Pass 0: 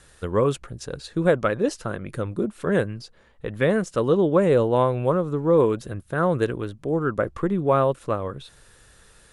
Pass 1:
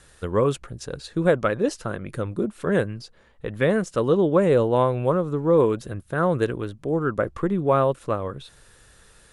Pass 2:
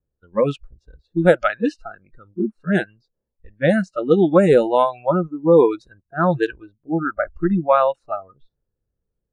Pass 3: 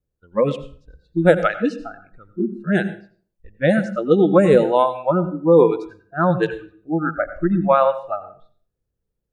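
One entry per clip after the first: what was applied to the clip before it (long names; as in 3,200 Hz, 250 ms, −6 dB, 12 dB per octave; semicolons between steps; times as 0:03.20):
no processing that can be heard
noise reduction from a noise print of the clip's start 28 dB; low-pass that shuts in the quiet parts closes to 420 Hz, open at −16 dBFS; level +6 dB
convolution reverb RT60 0.45 s, pre-delay 80 ms, DRR 12 dB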